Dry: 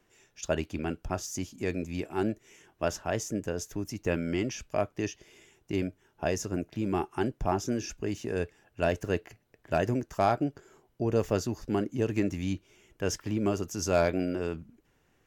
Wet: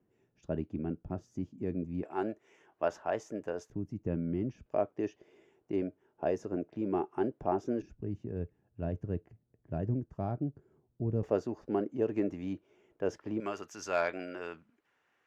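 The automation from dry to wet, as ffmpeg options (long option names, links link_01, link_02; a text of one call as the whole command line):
ffmpeg -i in.wav -af "asetnsamples=nb_out_samples=441:pad=0,asendcmd='2.03 bandpass f 760;3.7 bandpass f 160;4.66 bandpass f 460;7.82 bandpass f 120;11.23 bandpass f 520;13.4 bandpass f 1500',bandpass=frequency=190:width_type=q:width=0.84:csg=0" out.wav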